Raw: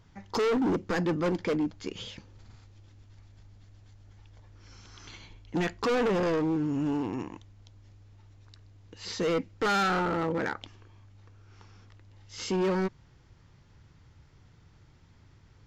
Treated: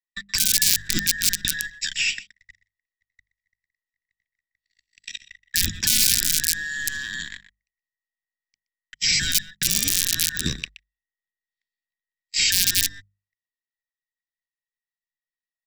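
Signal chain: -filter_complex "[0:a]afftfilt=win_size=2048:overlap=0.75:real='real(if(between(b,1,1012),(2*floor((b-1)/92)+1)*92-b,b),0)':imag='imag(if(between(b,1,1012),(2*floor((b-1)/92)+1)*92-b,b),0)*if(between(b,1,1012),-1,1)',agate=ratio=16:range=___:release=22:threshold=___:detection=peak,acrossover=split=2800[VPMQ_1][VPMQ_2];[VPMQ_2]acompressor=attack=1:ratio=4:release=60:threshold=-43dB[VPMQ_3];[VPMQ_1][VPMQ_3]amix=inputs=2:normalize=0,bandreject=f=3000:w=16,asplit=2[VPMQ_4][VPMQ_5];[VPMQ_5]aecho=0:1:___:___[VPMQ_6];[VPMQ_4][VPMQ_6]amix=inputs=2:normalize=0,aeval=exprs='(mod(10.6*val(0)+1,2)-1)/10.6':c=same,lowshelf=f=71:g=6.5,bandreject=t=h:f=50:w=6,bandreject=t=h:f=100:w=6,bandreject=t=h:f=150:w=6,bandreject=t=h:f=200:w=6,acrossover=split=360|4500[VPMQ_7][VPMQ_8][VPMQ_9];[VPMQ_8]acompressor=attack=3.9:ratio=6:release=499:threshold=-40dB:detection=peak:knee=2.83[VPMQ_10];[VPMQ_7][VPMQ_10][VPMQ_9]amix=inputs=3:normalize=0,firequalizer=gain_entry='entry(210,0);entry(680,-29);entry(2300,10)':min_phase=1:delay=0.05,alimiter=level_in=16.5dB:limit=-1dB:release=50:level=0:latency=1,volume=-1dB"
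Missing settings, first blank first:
-58dB, -48dB, 123, 0.106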